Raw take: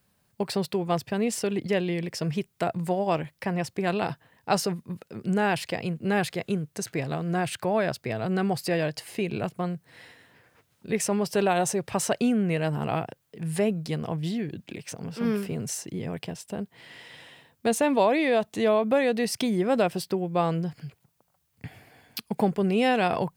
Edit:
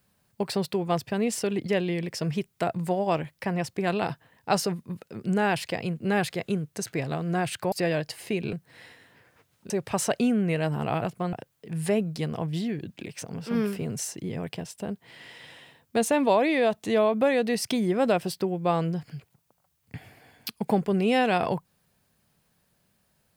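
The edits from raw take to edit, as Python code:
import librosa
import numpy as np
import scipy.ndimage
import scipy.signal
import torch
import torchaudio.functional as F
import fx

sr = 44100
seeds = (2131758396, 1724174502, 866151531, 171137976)

y = fx.edit(x, sr, fx.cut(start_s=7.72, length_s=0.88),
    fx.move(start_s=9.41, length_s=0.31, to_s=13.03),
    fx.cut(start_s=10.89, length_s=0.82), tone=tone)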